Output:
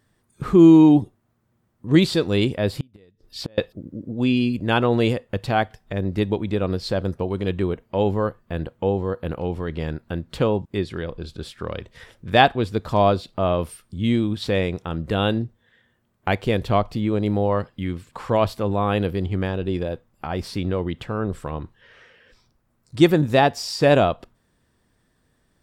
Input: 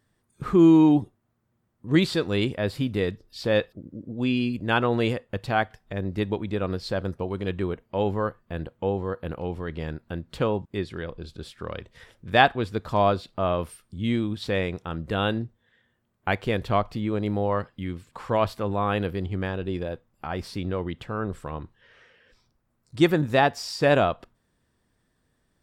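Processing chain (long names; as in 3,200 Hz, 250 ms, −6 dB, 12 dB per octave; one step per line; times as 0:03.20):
dynamic equaliser 1,500 Hz, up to −5 dB, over −40 dBFS, Q 0.92
0:02.69–0:03.58: gate with flip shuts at −19 dBFS, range −32 dB
level +5 dB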